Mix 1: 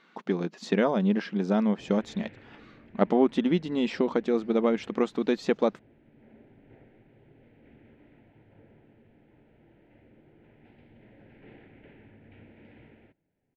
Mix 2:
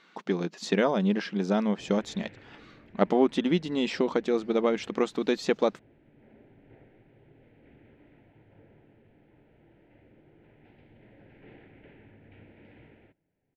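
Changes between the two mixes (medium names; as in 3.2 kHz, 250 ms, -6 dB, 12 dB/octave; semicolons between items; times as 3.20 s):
speech: add treble shelf 3.7 kHz +8 dB; master: add peaking EQ 230 Hz -4.5 dB 0.21 oct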